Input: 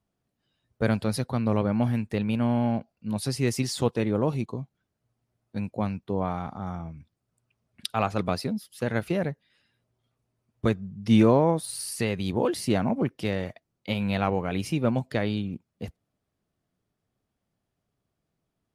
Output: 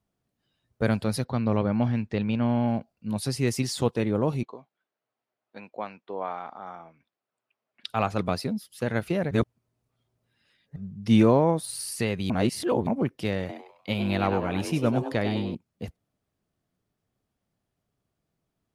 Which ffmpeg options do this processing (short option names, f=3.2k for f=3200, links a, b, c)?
-filter_complex "[0:a]asplit=3[a][b][c];[a]afade=t=out:st=1.24:d=0.02[d];[b]lowpass=f=6k:w=0.5412,lowpass=f=6k:w=1.3066,afade=t=in:st=1.24:d=0.02,afade=t=out:st=2.66:d=0.02[e];[c]afade=t=in:st=2.66:d=0.02[f];[d][e][f]amix=inputs=3:normalize=0,asettb=1/sr,asplit=3[g][h][i];[g]atrim=end=4.434[j];[h]atrim=start=4.43:end=7.87,asetpts=PTS-STARTPTS,afade=t=in:d=0.004:c=qsin,afade=t=out:st=3.436:d=0.004:c=qsin,highpass=510,lowpass=3.5k[k];[i]atrim=start=7.866[l];[j][k]acrossfade=d=0.004:c1=hsin:c2=qsin[m];[m][l]acrossfade=d=0.004:c1=qsin:c2=hsin,asettb=1/sr,asplit=3[n][o][p];[n]atrim=end=13.394[q];[o]atrim=start=13.39:end=15.55,asetpts=PTS-STARTPTS,afade=t=in:d=0.004:c=qsin,afade=t=out:st=2.156:d=0.004:c=qsin,asplit=5[r][s][t][u][v];[s]adelay=99,afreqshift=140,volume=-8dB[w];[t]adelay=198,afreqshift=280,volume=-17.6dB[x];[u]adelay=297,afreqshift=420,volume=-27.3dB[y];[v]adelay=396,afreqshift=560,volume=-36.9dB[z];[r][w][x][y][z]amix=inputs=5:normalize=0,atrim=end_sample=95256[aa];[p]atrim=start=15.546[ab];[q][aa]acrossfade=d=0.004:c1=hsin:c2=qsin[ac];[ac][ab]acrossfade=d=0.004:c1=qsin:c2=hsin,asplit=5[ad][ae][af][ag][ah];[ad]atrim=end=9.312[ai];[ae]atrim=start=9.308:end=10.762,asetpts=PTS-STARTPTS,areverse[aj];[af]atrim=start=10.758:end=12.302[ak];[ag]atrim=start=12.298:end=12.872,asetpts=PTS-STARTPTS,areverse[al];[ah]atrim=start=12.868[am];[ai][aj]acrossfade=d=0.004:c1=hsin:c2=hsin[an];[an][ak]acrossfade=d=0.004:c1=hsin:c2=hsin[ao];[ao][al]acrossfade=d=0.004:c1=hsin:c2=hsin[ap];[ap][am]acrossfade=d=0.004:c1=hsin:c2=hsin"